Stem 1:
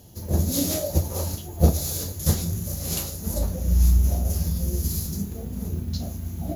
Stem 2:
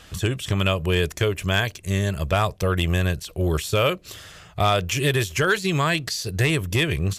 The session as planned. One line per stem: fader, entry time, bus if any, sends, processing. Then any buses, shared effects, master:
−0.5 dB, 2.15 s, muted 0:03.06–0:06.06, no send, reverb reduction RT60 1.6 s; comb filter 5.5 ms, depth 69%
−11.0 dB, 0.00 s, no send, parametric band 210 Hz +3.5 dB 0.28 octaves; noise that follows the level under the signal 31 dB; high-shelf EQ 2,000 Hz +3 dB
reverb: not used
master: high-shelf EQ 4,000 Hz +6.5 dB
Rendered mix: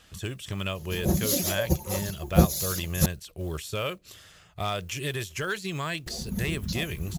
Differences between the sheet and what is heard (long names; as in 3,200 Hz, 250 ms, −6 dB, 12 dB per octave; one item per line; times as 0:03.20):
stem 1: entry 2.15 s → 0.75 s
master: missing high-shelf EQ 4,000 Hz +6.5 dB